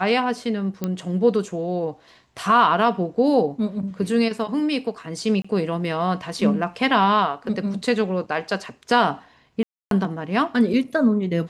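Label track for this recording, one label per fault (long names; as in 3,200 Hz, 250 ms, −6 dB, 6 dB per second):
0.840000	0.840000	click −12 dBFS
5.420000	5.450000	drop-out 25 ms
9.630000	9.910000	drop-out 282 ms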